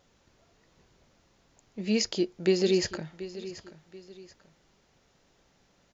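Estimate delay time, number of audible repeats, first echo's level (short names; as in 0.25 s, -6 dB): 0.732 s, 2, -15.0 dB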